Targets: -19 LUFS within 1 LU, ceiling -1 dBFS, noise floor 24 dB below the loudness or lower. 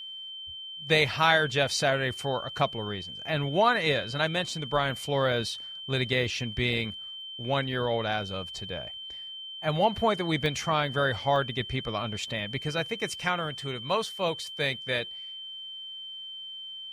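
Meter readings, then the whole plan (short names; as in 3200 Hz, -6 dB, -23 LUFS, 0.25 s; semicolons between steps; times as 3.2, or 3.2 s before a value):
dropouts 2; longest dropout 1.1 ms; steady tone 3100 Hz; tone level -38 dBFS; loudness -28.5 LUFS; peak -7.0 dBFS; loudness target -19.0 LUFS
-> interpolate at 10.46/11.36, 1.1 ms; notch 3100 Hz, Q 30; gain +9.5 dB; limiter -1 dBFS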